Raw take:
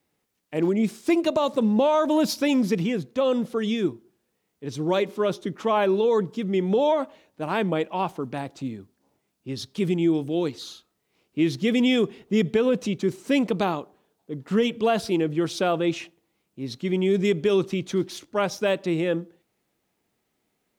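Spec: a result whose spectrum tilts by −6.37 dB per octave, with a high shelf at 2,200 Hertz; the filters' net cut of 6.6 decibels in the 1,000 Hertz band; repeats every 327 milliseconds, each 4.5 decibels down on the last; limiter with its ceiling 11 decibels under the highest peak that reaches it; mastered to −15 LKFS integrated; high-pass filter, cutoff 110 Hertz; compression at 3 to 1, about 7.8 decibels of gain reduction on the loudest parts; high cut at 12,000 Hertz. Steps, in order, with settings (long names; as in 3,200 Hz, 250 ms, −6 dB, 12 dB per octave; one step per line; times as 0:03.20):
high-pass filter 110 Hz
low-pass filter 12,000 Hz
parametric band 1,000 Hz −7 dB
high-shelf EQ 2,200 Hz −9 dB
downward compressor 3 to 1, threshold −29 dBFS
brickwall limiter −29.5 dBFS
repeating echo 327 ms, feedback 60%, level −4.5 dB
level +22 dB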